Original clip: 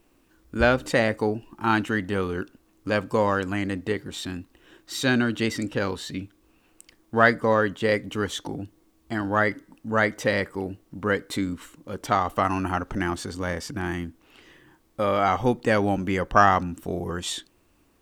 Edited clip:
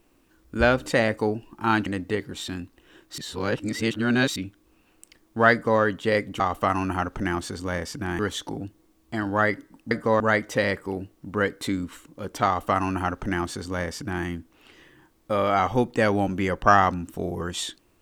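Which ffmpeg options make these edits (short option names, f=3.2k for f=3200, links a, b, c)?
-filter_complex "[0:a]asplit=8[a][b][c][d][e][f][g][h];[a]atrim=end=1.862[i];[b]atrim=start=3.628:end=4.952[j];[c]atrim=start=4.948:end=6.132,asetpts=PTS-STARTPTS,areverse[k];[d]atrim=start=6.128:end=8.172[l];[e]atrim=start=12.148:end=13.942[m];[f]atrim=start=8.168:end=9.892[n];[g]atrim=start=7.288:end=7.582[o];[h]atrim=start=9.888[p];[i][j]acrossfade=d=0.004:c1=hsin:c2=hsin[q];[q][k]acrossfade=d=0.004:c1=hsin:c2=hsin[r];[r][l]acrossfade=d=0.004:c1=hsin:c2=hsin[s];[s][m]acrossfade=d=0.004:c1=hsin:c2=hsin[t];[t][n]acrossfade=d=0.004:c1=hsin:c2=hsin[u];[u][o]acrossfade=d=0.004:c1=hsin:c2=hsin[v];[v][p]acrossfade=d=0.004:c1=hsin:c2=hsin"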